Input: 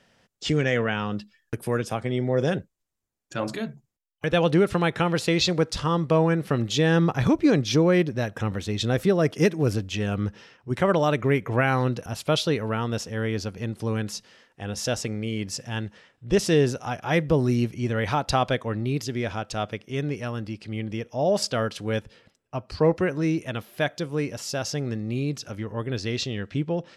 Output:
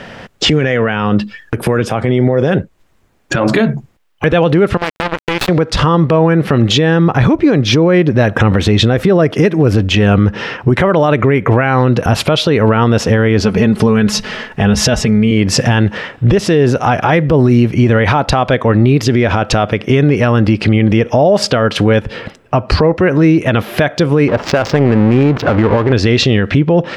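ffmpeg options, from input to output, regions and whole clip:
-filter_complex "[0:a]asettb=1/sr,asplit=3[s0][s1][s2];[s0]atrim=end=4.774[s3];[s1]atrim=start=4.77:end=5.49,asetpts=PTS-STARTPTS,afade=t=in:d=0.004:c=qsin,afade=t=out:st=0.716:d=0.004:c=qsin,acrusher=bits=2:mix=0:aa=0.5,aeval=exprs='(tanh(7.08*val(0)+0.8)-tanh(0.8))/7.08':c=same[s4];[s2]atrim=start=5.486[s5];[s3][s4]acrossfade=d=0.004:c1=hsin:c2=qsin[s6];[s6][s5]acrossfade=d=0.004:c1=qsin:c2=hsin,asettb=1/sr,asplit=3[s7][s8][s9];[s7]atrim=end=13.404[s10];[s8]atrim=start=13.4:end=15.31,asetpts=PTS-STARTPTS,afade=t=in:d=0.004:c=qsin,afade=t=out:st=1.906:d=0.004:c=qsin,aecho=1:1:4.7:0.58,atrim=end_sample=84231,asubboost=boost=5.5:cutoff=180[s11];[s9]atrim=start=15.306[s12];[s10][s11]acrossfade=d=0.004:c1=hsin:c2=qsin[s13];[s13][s12]acrossfade=d=0.004:c1=qsin:c2=hsin,asettb=1/sr,asplit=3[s14][s15][s16];[s14]atrim=end=24.284[s17];[s15]atrim=start=24.28:end=25.93,asetpts=PTS-STARTPTS,afade=t=in:d=0.004:c=qsin,afade=t=out:st=1.646:d=0.004:c=qsin,aeval=exprs='val(0)+0.5*0.0158*sgn(val(0))':c=same,lowshelf=f=320:g=-7.5,adynamicsmooth=sensitivity=4.5:basefreq=510[s18];[s16]atrim=start=25.926[s19];[s17][s18]acrossfade=d=0.004:c1=hsin:c2=qsin[s20];[s20][s19]acrossfade=d=0.004:c1=qsin:c2=hsin,bass=f=250:g=-1,treble=f=4000:g=-14,acompressor=threshold=0.0178:ratio=6,alimiter=level_in=44.7:limit=0.891:release=50:level=0:latency=1,volume=0.841"

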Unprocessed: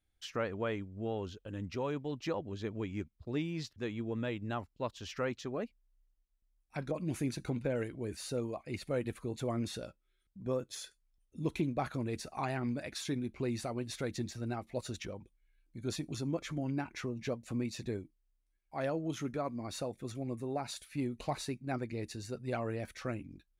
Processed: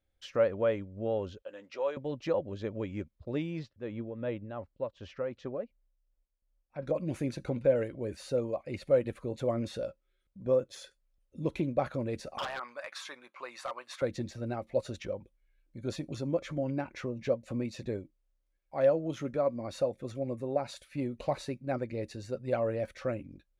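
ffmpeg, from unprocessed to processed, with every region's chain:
-filter_complex "[0:a]asettb=1/sr,asplit=3[s0][s1][s2];[s0]atrim=end=1.424[s3];[s1]atrim=start=1.42:end=1.97,asetpts=PTS-STARTPTS,afade=t=in:d=0.004:c=qsin,afade=t=out:st=0.546:d=0.004:c=qsin,highpass=620,lowpass=8000,asplit=2[s4][s5];[s5]adelay=14,volume=0.282[s6];[s4][s6]amix=inputs=2:normalize=0,atrim=end_sample=24255[s7];[s2]atrim=start=1.966[s8];[s3][s7]acrossfade=d=0.004:c1=hsin:c2=qsin[s9];[s9][s8]acrossfade=d=0.004:c1=qsin:c2=hsin,asettb=1/sr,asplit=3[s10][s11][s12];[s10]atrim=end=3.594[s13];[s11]atrim=start=3.59:end=6.83,asetpts=PTS-STARTPTS,afade=t=in:d=0.004:c=qsin,afade=t=out:st=3.236:d=0.004:c=qsin,lowpass=f=2000:p=1,tremolo=f=2.7:d=0.58[s14];[s12]atrim=start=6.826[s15];[s13][s14]acrossfade=d=0.004:c1=hsin:c2=qsin[s16];[s16][s15]acrossfade=d=0.004:c1=qsin:c2=hsin,asettb=1/sr,asplit=3[s17][s18][s19];[s17]atrim=end=12.384[s20];[s18]atrim=start=12.38:end=14.02,asetpts=PTS-STARTPTS,afade=t=in:d=0.004:c=qsin,afade=t=out:st=1.636:d=0.004:c=qsin,highpass=f=1100:t=q:w=3.9,aeval=exprs='0.0282*(abs(mod(val(0)/0.0282+3,4)-2)-1)':c=same[s21];[s19]atrim=start=14.016[s22];[s20][s21]acrossfade=d=0.004:c1=hsin:c2=qsin[s23];[s23][s22]acrossfade=d=0.004:c1=qsin:c2=hsin,lowpass=f=3700:p=1,equalizer=f=550:w=5.2:g=13.5,volume=1.12"

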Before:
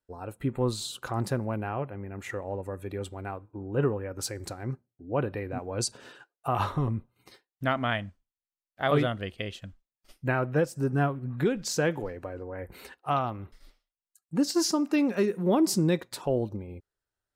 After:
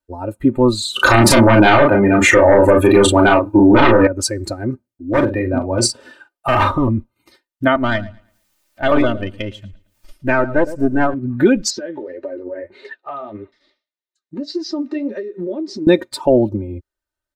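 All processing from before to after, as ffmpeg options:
-filter_complex "[0:a]asettb=1/sr,asplit=3[s0][s1][s2];[s0]atrim=end=0.964[s3];[s1]atrim=start=0.96:end=4.07,asetpts=PTS-STARTPTS,afade=t=in:d=0.004:c=qsin,afade=t=out:st=3.106:d=0.004:c=qsin,lowshelf=f=170:g=-8,aeval=exprs='0.15*sin(PI/2*3.55*val(0)/0.15)':c=same,asplit=2[s4][s5];[s5]adelay=35,volume=0.708[s6];[s4][s6]amix=inputs=2:normalize=0,atrim=end_sample=137151[s7];[s2]atrim=start=4.066[s8];[s3][s7]acrossfade=d=0.004:c1=hsin:c2=qsin[s9];[s9][s8]acrossfade=d=0.004:c1=qsin:c2=hsin,asettb=1/sr,asplit=3[s10][s11][s12];[s10]atrim=end=5.084[s13];[s11]atrim=start=5.08:end=6.71,asetpts=PTS-STARTPTS,afade=t=in:d=0.004:c=qsin,afade=t=out:st=1.626:d=0.004:c=qsin,bandreject=f=6600:w=9,aeval=exprs='0.0708*(abs(mod(val(0)/0.0708+3,4)-2)-1)':c=same,asplit=2[s14][s15];[s15]adelay=43,volume=0.473[s16];[s14][s16]amix=inputs=2:normalize=0,atrim=end_sample=71883[s17];[s12]atrim=start=6.706[s18];[s13][s17]acrossfade=d=0.004:c1=hsin:c2=qsin[s19];[s19][s18]acrossfade=d=0.004:c1=qsin:c2=hsin,asettb=1/sr,asplit=3[s20][s21][s22];[s20]atrim=end=7.754[s23];[s21]atrim=start=7.75:end=11.14,asetpts=PTS-STARTPTS,afade=t=in:d=0.004:c=qsin,afade=t=out:st=3.386:d=0.004:c=qsin,acompressor=mode=upward:threshold=0.0141:ratio=2.5:attack=3.2:release=140:knee=2.83:detection=peak,aeval=exprs='(tanh(11.2*val(0)+0.75)-tanh(0.75))/11.2':c=same,asplit=2[s24][s25];[s25]adelay=111,lowpass=f=4400:p=1,volume=0.224,asplit=2[s26][s27];[s27]adelay=111,lowpass=f=4400:p=1,volume=0.38,asplit=2[s28][s29];[s29]adelay=111,lowpass=f=4400:p=1,volume=0.38,asplit=2[s30][s31];[s31]adelay=111,lowpass=f=4400:p=1,volume=0.38[s32];[s24][s26][s28][s30][s32]amix=inputs=5:normalize=0,atrim=end_sample=149499[s33];[s22]atrim=start=11.136[s34];[s23][s33]acrossfade=d=0.004:c1=hsin:c2=qsin[s35];[s35][s34]acrossfade=d=0.004:c1=qsin:c2=hsin,asettb=1/sr,asplit=3[s36][s37][s38];[s36]atrim=end=11.704[s39];[s37]atrim=start=11.7:end=15.87,asetpts=PTS-STARTPTS,afade=t=in:d=0.004:c=qsin,afade=t=out:st=4.166:d=0.004:c=qsin,highpass=150,equalizer=f=410:t=q:w=4:g=10,equalizer=f=610:t=q:w=4:g=4,equalizer=f=1900:t=q:w=4:g=9,equalizer=f=3800:t=q:w=4:g=9,lowpass=f=5900:w=0.5412,lowpass=f=5900:w=1.3066,acompressor=threshold=0.0251:ratio=12:attack=3.2:release=140:knee=1:detection=peak,flanger=delay=6.4:depth=7.6:regen=47:speed=1.7:shape=triangular[s40];[s38]atrim=start=15.866[s41];[s39][s40]acrossfade=d=0.004:c1=hsin:c2=qsin[s42];[s42][s41]acrossfade=d=0.004:c1=qsin:c2=hsin,afftdn=nr=13:nf=-37,aecho=1:1:3.3:0.75,alimiter=level_in=5.31:limit=0.891:release=50:level=0:latency=1,volume=0.891"

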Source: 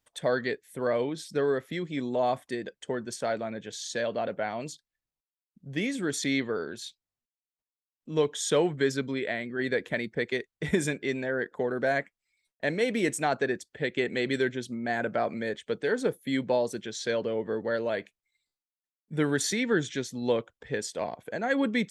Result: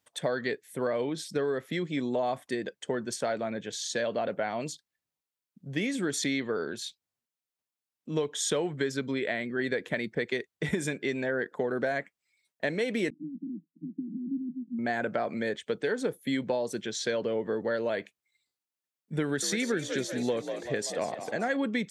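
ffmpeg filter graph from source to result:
-filter_complex "[0:a]asettb=1/sr,asplit=3[s0][s1][s2];[s0]atrim=end=13.104[s3];[s1]atrim=start=13.1:end=14.79,asetpts=PTS-STARTPTS,afade=t=in:d=0.004:c=qsin,afade=t=out:st=1.686:d=0.004:c=qsin,asuperpass=centerf=230:order=20:qfactor=1.4,aecho=1:1:1.3:0.37,atrim=end_sample=74529[s4];[s2]atrim=start=14.786[s5];[s3][s4]acrossfade=d=0.004:c1=hsin:c2=qsin[s6];[s6][s5]acrossfade=d=0.004:c1=qsin:c2=hsin,asettb=1/sr,asplit=3[s7][s8][s9];[s7]atrim=end=19.234[s10];[s8]atrim=start=19.23:end=21.57,asetpts=PTS-STARTPTS,afade=t=in:d=0.004:c=qsin,afade=t=out:st=2.336:d=0.004:c=qsin,equalizer=f=930:w=7.3:g=-5,asplit=8[s11][s12][s13][s14][s15][s16][s17][s18];[s12]adelay=193,afreqshift=54,volume=0.251[s19];[s13]adelay=386,afreqshift=108,volume=0.158[s20];[s14]adelay=579,afreqshift=162,volume=0.1[s21];[s15]adelay=772,afreqshift=216,volume=0.0631[s22];[s16]adelay=965,afreqshift=270,volume=0.0394[s23];[s17]adelay=1158,afreqshift=324,volume=0.0248[s24];[s18]adelay=1351,afreqshift=378,volume=0.0157[s25];[s11][s19][s20][s21][s22][s23][s24][s25]amix=inputs=8:normalize=0,atrim=end_sample=103194[s26];[s9]atrim=start=21.566[s27];[s10][s26]acrossfade=d=0.004:c1=hsin:c2=qsin[s28];[s28][s27]acrossfade=d=0.004:c1=qsin:c2=hsin,highpass=100,acompressor=threshold=0.0398:ratio=6,volume=1.33"

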